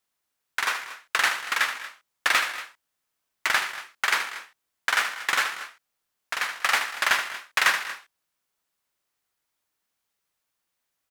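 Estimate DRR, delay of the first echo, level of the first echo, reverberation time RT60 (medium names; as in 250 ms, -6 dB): no reverb, 77 ms, -9.5 dB, no reverb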